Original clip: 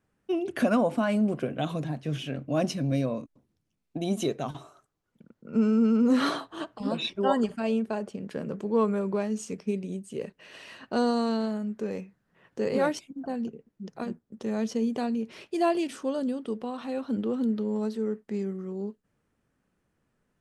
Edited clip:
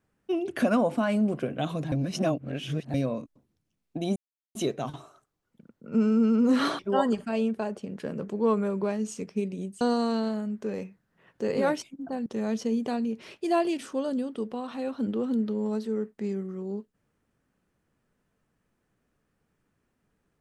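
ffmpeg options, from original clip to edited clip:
ffmpeg -i in.wav -filter_complex "[0:a]asplit=7[link_01][link_02][link_03][link_04][link_05][link_06][link_07];[link_01]atrim=end=1.922[link_08];[link_02]atrim=start=1.918:end=2.942,asetpts=PTS-STARTPTS,areverse[link_09];[link_03]atrim=start=2.938:end=4.16,asetpts=PTS-STARTPTS,afade=type=out:start_time=1.218:duration=0.004:curve=hsin,apad=pad_dur=0.39[link_10];[link_04]atrim=start=4.16:end=6.402,asetpts=PTS-STARTPTS,afade=type=in:duration=0.004:curve=hsin[link_11];[link_05]atrim=start=7.098:end=10.122[link_12];[link_06]atrim=start=10.978:end=13.432[link_13];[link_07]atrim=start=14.358[link_14];[link_08][link_09]acrossfade=duration=0.004:curve1=hsin:curve2=hsin[link_15];[link_10][link_11]concat=n=2:v=0:a=1[link_16];[link_15][link_16]acrossfade=duration=0.004:curve1=hsin:curve2=hsin[link_17];[link_17][link_12]acrossfade=duration=0.004:curve1=hsin:curve2=hsin[link_18];[link_18][link_13]acrossfade=duration=0.004:curve1=hsin:curve2=hsin[link_19];[link_19][link_14]acrossfade=duration=0.004:curve1=hsin:curve2=hsin" out.wav

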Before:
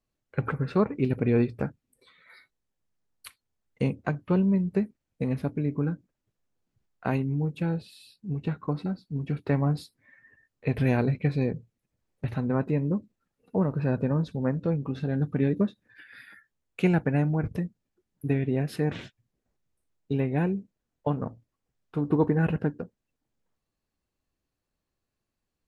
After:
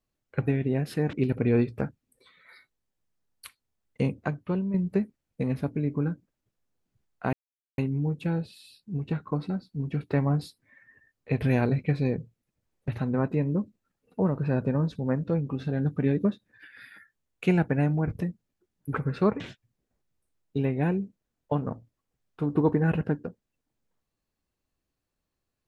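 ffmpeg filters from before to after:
ffmpeg -i in.wav -filter_complex "[0:a]asplit=7[link_01][link_02][link_03][link_04][link_05][link_06][link_07];[link_01]atrim=end=0.472[link_08];[link_02]atrim=start=18.288:end=18.952[link_09];[link_03]atrim=start=0.938:end=4.55,asetpts=PTS-STARTPTS,afade=type=out:start_time=3.042:duration=0.57:silence=0.375837[link_10];[link_04]atrim=start=4.55:end=7.14,asetpts=PTS-STARTPTS,afade=type=in:duration=0.004:curve=hsin:silence=0.375837,afade=type=out:start_time=2.586:duration=0.004:curve=hsin,apad=pad_dur=0.45[link_11];[link_05]atrim=start=7.14:end=18.292,asetpts=PTS-STARTPTS,afade=type=in:duration=0.004:curve=hsin[link_12];[link_06]atrim=start=0.468:end=0.942[link_13];[link_07]atrim=start=18.948[link_14];[link_08][link_09]acrossfade=duration=0.004:curve1=hsin:curve2=hsin[link_15];[link_10][link_11][link_12]concat=n=3:v=0:a=1[link_16];[link_15][link_16]acrossfade=duration=0.004:curve1=hsin:curve2=hsin[link_17];[link_17][link_13]acrossfade=duration=0.004:curve1=hsin:curve2=hsin[link_18];[link_18][link_14]acrossfade=duration=0.004:curve1=hsin:curve2=hsin" out.wav

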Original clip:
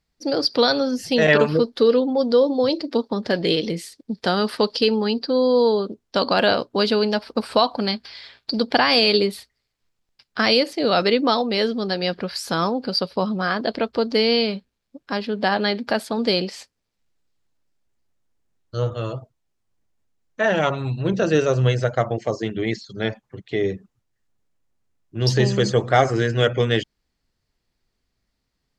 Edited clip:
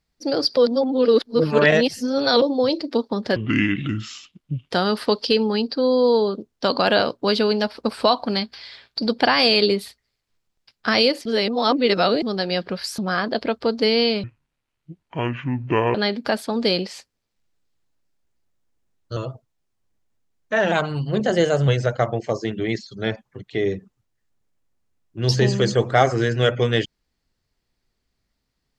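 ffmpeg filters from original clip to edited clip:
ffmpeg -i in.wav -filter_complex "[0:a]asplit=13[link_01][link_02][link_03][link_04][link_05][link_06][link_07][link_08][link_09][link_10][link_11][link_12][link_13];[link_01]atrim=end=0.572[link_14];[link_02]atrim=start=0.568:end=2.422,asetpts=PTS-STARTPTS,areverse[link_15];[link_03]atrim=start=2.418:end=3.364[link_16];[link_04]atrim=start=3.36:end=4.22,asetpts=PTS-STARTPTS,asetrate=28224,aresample=44100,atrim=end_sample=59259,asetpts=PTS-STARTPTS[link_17];[link_05]atrim=start=4.216:end=10.772[link_18];[link_06]atrim=start=10.768:end=11.742,asetpts=PTS-STARTPTS,areverse[link_19];[link_07]atrim=start=11.738:end=12.502[link_20];[link_08]atrim=start=13.308:end=14.564[link_21];[link_09]atrim=start=14.56:end=15.57,asetpts=PTS-STARTPTS,asetrate=26019,aresample=44100,atrim=end_sample=75493,asetpts=PTS-STARTPTS[link_22];[link_10]atrim=start=15.566:end=18.792[link_23];[link_11]atrim=start=19.038:end=20.594[link_24];[link_12]atrim=start=20.59:end=21.66,asetpts=PTS-STARTPTS,asetrate=48951,aresample=44100[link_25];[link_13]atrim=start=21.656[link_26];[link_14][link_15]acrossfade=duration=0.004:curve1=hsin:curve2=hsin[link_27];[link_27][link_16]acrossfade=duration=0.004:curve1=hsin:curve2=hsin[link_28];[link_28][link_17]acrossfade=duration=0.004:curve1=hsin:curve2=hsin[link_29];[link_29][link_18]acrossfade=duration=0.004:curve1=hsin:curve2=hsin[link_30];[link_30][link_19]acrossfade=duration=0.004:curve1=hsin:curve2=hsin[link_31];[link_31][link_20]acrossfade=duration=0.004:curve1=hsin:curve2=hsin[link_32];[link_32][link_21]acrossfade=duration=0.004:curve1=hsin:curve2=hsin[link_33];[link_33][link_22]acrossfade=duration=0.004:curve1=hsin:curve2=hsin[link_34];[link_34][link_23]acrossfade=duration=0.004:curve1=hsin:curve2=hsin[link_35];[link_35][link_24]acrossfade=duration=0.004:curve1=hsin:curve2=hsin[link_36];[link_36][link_25]acrossfade=duration=0.004:curve1=hsin:curve2=hsin[link_37];[link_37][link_26]acrossfade=duration=0.004:curve1=hsin:curve2=hsin" out.wav

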